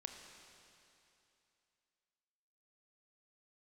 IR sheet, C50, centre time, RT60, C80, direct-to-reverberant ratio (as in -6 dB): 5.0 dB, 67 ms, 2.8 s, 5.5 dB, 3.5 dB